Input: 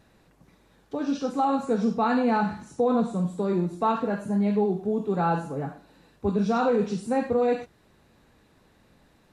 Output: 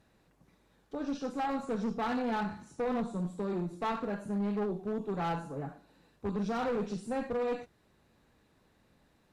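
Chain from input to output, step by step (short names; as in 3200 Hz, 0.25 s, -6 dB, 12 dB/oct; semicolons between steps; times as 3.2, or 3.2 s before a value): tube stage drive 20 dB, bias 0.55; hard clip -22.5 dBFS, distortion -18 dB; gain -5 dB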